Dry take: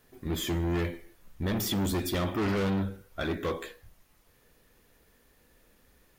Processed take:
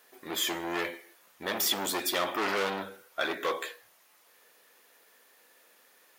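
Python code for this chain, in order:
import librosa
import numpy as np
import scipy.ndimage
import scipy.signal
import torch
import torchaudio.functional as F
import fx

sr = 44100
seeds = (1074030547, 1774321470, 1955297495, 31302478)

y = scipy.signal.sosfilt(scipy.signal.butter(2, 600.0, 'highpass', fs=sr, output='sos'), x)
y = y * librosa.db_to_amplitude(5.5)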